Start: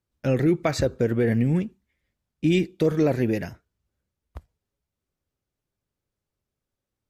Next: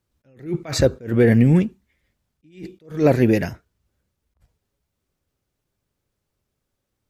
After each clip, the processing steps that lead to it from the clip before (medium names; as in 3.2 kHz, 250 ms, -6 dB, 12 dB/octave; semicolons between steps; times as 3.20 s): attacks held to a fixed rise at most 170 dB/s; trim +7.5 dB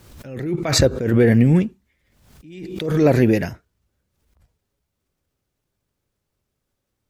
swell ahead of each attack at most 57 dB/s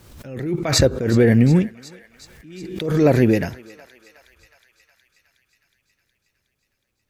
thinning echo 366 ms, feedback 74%, high-pass 890 Hz, level -17.5 dB